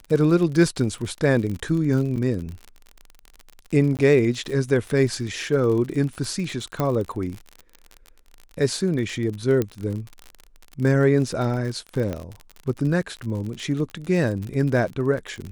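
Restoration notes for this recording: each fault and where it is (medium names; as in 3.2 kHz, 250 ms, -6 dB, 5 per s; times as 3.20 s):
crackle 46 per s -29 dBFS
2.16–2.17 s: dropout 5.5 ms
3.97–3.99 s: dropout 18 ms
6.80 s: pop -11 dBFS
9.62 s: pop -11 dBFS
12.13 s: pop -16 dBFS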